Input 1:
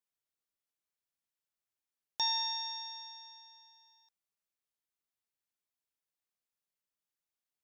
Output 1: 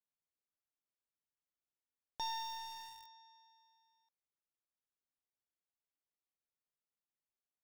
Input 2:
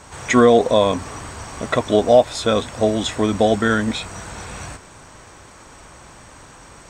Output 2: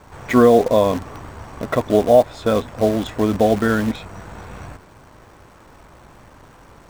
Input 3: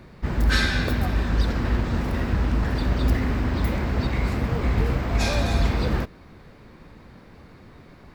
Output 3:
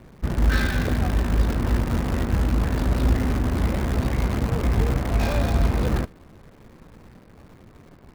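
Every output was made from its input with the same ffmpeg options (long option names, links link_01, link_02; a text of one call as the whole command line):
ffmpeg -i in.wav -filter_complex "[0:a]lowpass=frequency=1200:poles=1,asplit=2[link_01][link_02];[link_02]acrusher=bits=5:dc=4:mix=0:aa=0.000001,volume=-3dB[link_03];[link_01][link_03]amix=inputs=2:normalize=0,volume=-3.5dB" out.wav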